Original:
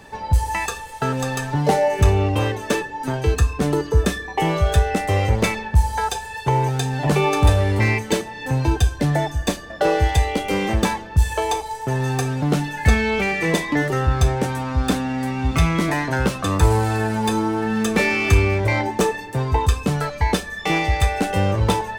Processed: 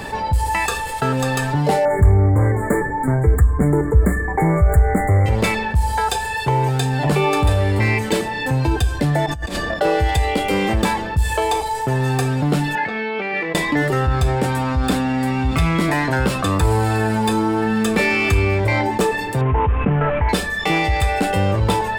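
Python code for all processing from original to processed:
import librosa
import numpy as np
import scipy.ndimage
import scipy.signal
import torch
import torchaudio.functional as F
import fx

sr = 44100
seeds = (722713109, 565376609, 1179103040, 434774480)

y = fx.chain(x, sr, fx.self_delay(depth_ms=0.17),
    fx.brickwall_bandstop(low_hz=2300.0, high_hz=6800.0),
    fx.low_shelf(hz=210.0, db=11.0), at=(1.85, 5.26))
y = fx.chain(y, sr, fx.high_shelf(hz=10000.0, db=-8.5),
    fx.over_compress(threshold_db=-34.0, ratio=-1.0), at=(9.26, 9.74))
y = fx.chain(y, sr, fx.bessel_highpass(hz=290.0, order=4),
    fx.over_compress(threshold_db=-27.0, ratio=-0.5),
    fx.air_absorb(metres=240.0), at=(12.75, 13.55))
y = fx.chain(y, sr, fx.cvsd(bps=16000),
    fx.air_absorb(metres=450.0),
    fx.env_flatten(amount_pct=50), at=(19.41, 20.29))
y = fx.notch(y, sr, hz=6100.0, q=6.4)
y = fx.env_flatten(y, sr, amount_pct=50)
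y = y * librosa.db_to_amplitude(-7.5)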